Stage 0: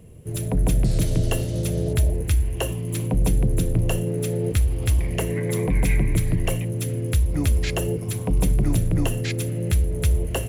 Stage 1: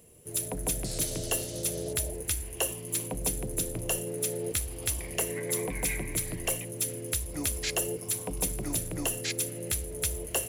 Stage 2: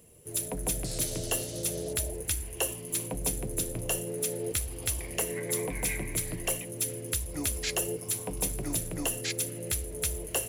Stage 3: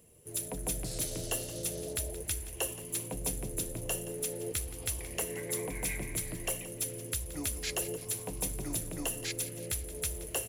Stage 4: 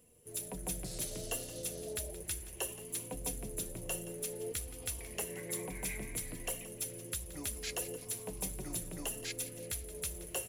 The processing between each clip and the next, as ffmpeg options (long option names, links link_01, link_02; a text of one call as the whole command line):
ffmpeg -i in.wav -af "bass=frequency=250:gain=-13,treble=frequency=4000:gain=10,volume=-5dB" out.wav
ffmpeg -i in.wav -af "flanger=delay=0.6:depth=8.8:regen=-71:speed=0.42:shape=triangular,volume=4dB" out.wav
ffmpeg -i in.wav -af "aecho=1:1:173|346|519|692|865|1038:0.168|0.0957|0.0545|0.0311|0.0177|0.0101,volume=-4dB" out.wav
ffmpeg -i in.wav -af "flanger=delay=4:depth=1.5:regen=51:speed=0.63:shape=sinusoidal" out.wav